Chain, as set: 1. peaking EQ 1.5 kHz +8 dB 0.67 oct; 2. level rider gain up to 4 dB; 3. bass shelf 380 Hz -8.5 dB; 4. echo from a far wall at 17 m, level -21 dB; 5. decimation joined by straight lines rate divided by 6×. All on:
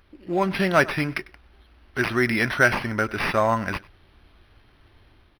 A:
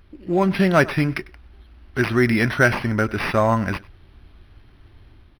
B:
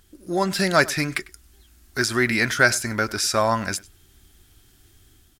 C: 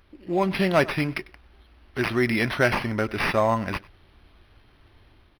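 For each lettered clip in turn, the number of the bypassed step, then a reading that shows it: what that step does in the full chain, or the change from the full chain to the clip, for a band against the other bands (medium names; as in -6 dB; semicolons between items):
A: 3, 125 Hz band +6.5 dB; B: 5, 8 kHz band +14.5 dB; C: 1, 8 kHz band -4.0 dB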